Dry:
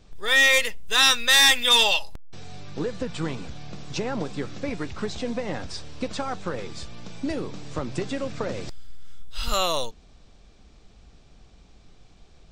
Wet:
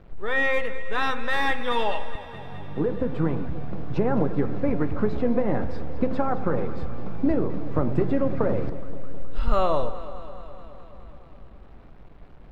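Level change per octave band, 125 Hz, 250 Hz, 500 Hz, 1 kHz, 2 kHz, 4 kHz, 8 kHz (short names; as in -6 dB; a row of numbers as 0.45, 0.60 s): +7.0 dB, +6.5 dB, +4.5 dB, +1.5 dB, -6.5 dB, -18.5 dB, under -25 dB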